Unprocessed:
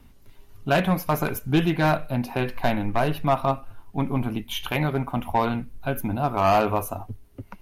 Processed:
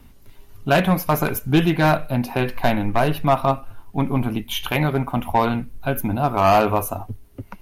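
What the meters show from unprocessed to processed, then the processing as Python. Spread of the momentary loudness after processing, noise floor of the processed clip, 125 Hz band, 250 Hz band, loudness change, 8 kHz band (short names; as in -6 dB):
11 LU, -47 dBFS, +4.0 dB, +4.0 dB, +4.0 dB, +5.5 dB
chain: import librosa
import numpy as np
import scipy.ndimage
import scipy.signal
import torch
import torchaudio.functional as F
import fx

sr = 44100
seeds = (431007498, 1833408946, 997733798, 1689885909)

y = fx.high_shelf(x, sr, hz=11000.0, db=4.0)
y = y * librosa.db_to_amplitude(4.0)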